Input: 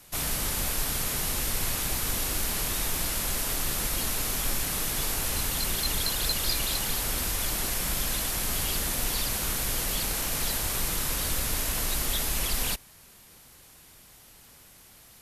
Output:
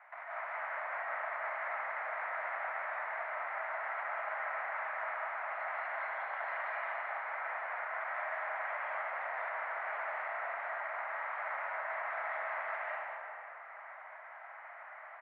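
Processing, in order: Chebyshev band-pass 640–2100 Hz, order 4; compressor with a negative ratio -45 dBFS, ratio -0.5; frequency-shifting echo 186 ms, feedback 37%, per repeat -44 Hz, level -8 dB; algorithmic reverb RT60 2.1 s, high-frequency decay 0.6×, pre-delay 120 ms, DRR -6.5 dB

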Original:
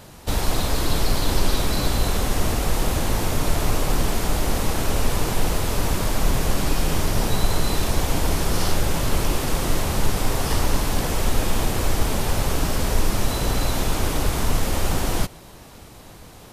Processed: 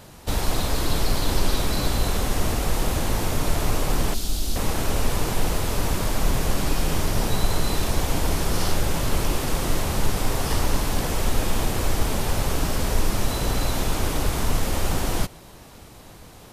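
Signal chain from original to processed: 4.14–4.56 s: graphic EQ 125/500/1000/2000/4000 Hz -11/-10/-10/-12/+6 dB; trim -1.5 dB

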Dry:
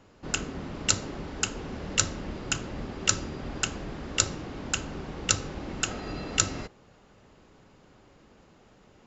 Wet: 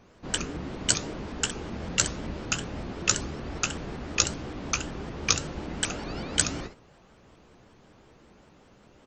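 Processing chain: early reflections 15 ms -8 dB, 67 ms -11 dB; vibrato with a chosen wave saw up 5.3 Hz, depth 250 cents

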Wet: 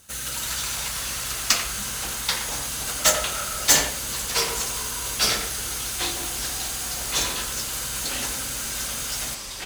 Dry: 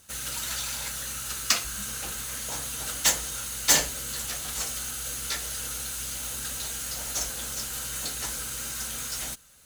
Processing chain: 3.00–3.63 s: small resonant body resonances 610/1300 Hz, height 13 dB -> 17 dB; speakerphone echo 90 ms, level -7 dB; ever faster or slower copies 281 ms, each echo -5 st, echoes 3, each echo -6 dB; trim +3 dB

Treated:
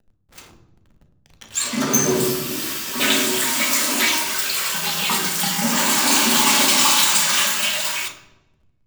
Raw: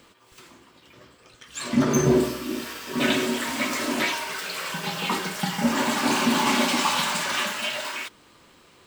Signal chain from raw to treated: RIAA curve recording; hysteresis with a dead band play -32.5 dBFS; hum notches 60/120/180/240/300/360/420/480/540/600 Hz; on a send: reverberation RT60 1.0 s, pre-delay 3 ms, DRR 6 dB; on the sum: trim +2 dB

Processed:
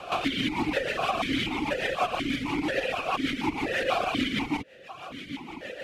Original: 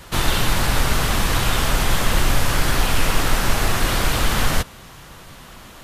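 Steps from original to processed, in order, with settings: reverb removal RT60 0.82 s; compression, threshold -25 dBFS, peak gain reduction 13.5 dB; rotary cabinet horn 6.3 Hz; loudness maximiser +20.5 dB; stepped vowel filter 4.1 Hz; trim +1 dB

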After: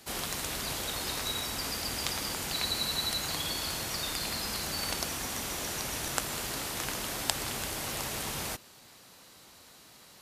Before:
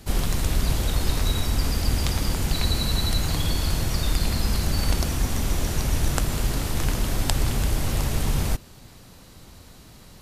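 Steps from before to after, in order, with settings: high-pass 700 Hz 6 dB/octave; trim -2 dB

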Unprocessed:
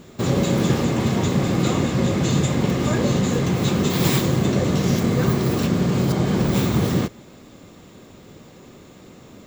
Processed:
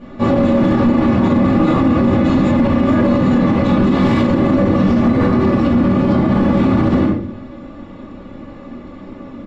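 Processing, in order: low-pass 2.1 kHz 12 dB/octave; comb 3.5 ms, depth 56%; hard clipper -15 dBFS, distortion -17 dB; simulated room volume 400 m³, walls furnished, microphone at 5.8 m; loudness maximiser +3.5 dB; trim -4.5 dB

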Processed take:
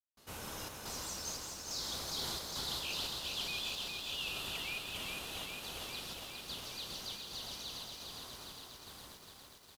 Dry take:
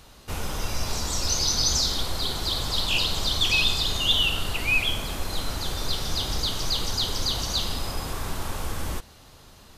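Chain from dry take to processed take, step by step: Doppler pass-by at 2.26 s, 12 m/s, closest 2 m; high-pass 170 Hz 6 dB/octave; treble shelf 8.9 kHz +5 dB; reverse; compression 8:1, threshold -50 dBFS, peak gain reduction 23 dB; reverse; trance gate ".xxx.xxx..xxxx" 88 bpm; on a send: frequency-shifting echo 163 ms, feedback 58%, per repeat +100 Hz, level -8 dB; on the sum: bit-crushed delay 407 ms, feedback 80%, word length 12-bit, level -4 dB; trim +10.5 dB

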